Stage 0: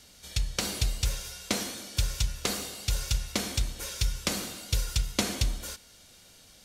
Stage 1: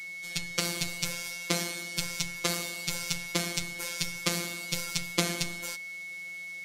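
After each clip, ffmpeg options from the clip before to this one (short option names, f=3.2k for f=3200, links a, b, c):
-af "highpass=90,afftfilt=real='hypot(re,im)*cos(PI*b)':imag='0':win_size=1024:overlap=0.75,aeval=exprs='val(0)+0.00794*sin(2*PI*2200*n/s)':c=same,volume=4dB"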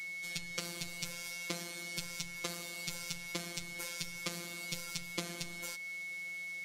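-af "acompressor=threshold=-35dB:ratio=3,volume=-2dB"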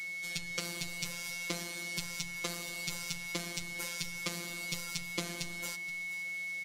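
-filter_complex "[0:a]asplit=2[a][b];[b]aeval=exprs='clip(val(0),-1,0.0841)':c=same,volume=-10dB[c];[a][c]amix=inputs=2:normalize=0,aecho=1:1:475:0.178"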